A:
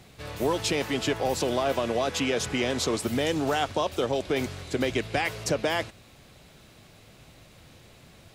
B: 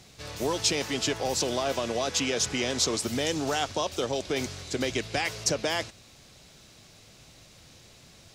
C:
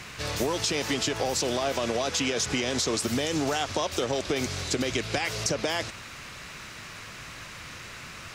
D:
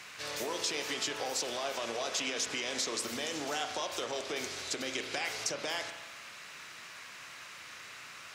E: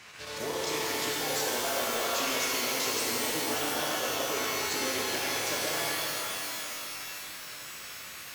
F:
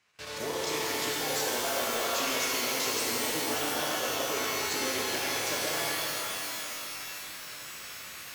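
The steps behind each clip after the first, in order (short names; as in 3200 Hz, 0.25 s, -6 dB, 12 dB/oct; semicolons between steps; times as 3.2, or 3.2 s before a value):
bell 5800 Hz +10.5 dB 1.2 oct; gain -3 dB
limiter -19.5 dBFS, peak gain reduction 9.5 dB; compressor, threshold -32 dBFS, peak gain reduction 7 dB; band noise 980–2800 Hz -53 dBFS; gain +8 dB
HPF 720 Hz 6 dB/oct; spring tank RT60 1.2 s, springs 34 ms, chirp 50 ms, DRR 6 dB; gain -5.5 dB
chopper 7.5 Hz, duty 85%; low shelf 340 Hz +6.5 dB; shimmer reverb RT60 3.3 s, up +12 st, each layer -2 dB, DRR -4.5 dB; gain -3.5 dB
gate with hold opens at -36 dBFS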